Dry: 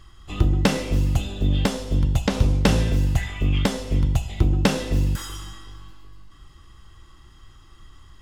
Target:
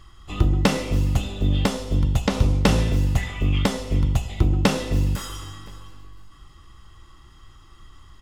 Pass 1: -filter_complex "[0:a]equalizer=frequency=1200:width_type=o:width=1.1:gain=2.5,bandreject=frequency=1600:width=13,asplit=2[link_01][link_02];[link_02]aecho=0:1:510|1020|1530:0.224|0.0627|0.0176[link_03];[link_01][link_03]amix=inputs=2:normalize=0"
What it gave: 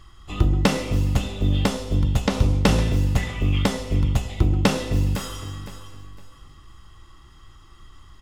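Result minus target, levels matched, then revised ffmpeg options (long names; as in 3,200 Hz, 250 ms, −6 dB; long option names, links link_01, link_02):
echo-to-direct +7.5 dB
-filter_complex "[0:a]equalizer=frequency=1200:width_type=o:width=1.1:gain=2.5,bandreject=frequency=1600:width=13,asplit=2[link_01][link_02];[link_02]aecho=0:1:510|1020:0.0944|0.0264[link_03];[link_01][link_03]amix=inputs=2:normalize=0"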